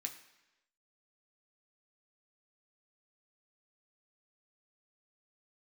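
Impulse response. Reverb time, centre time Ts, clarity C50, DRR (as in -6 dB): 1.0 s, 14 ms, 11.0 dB, 2.5 dB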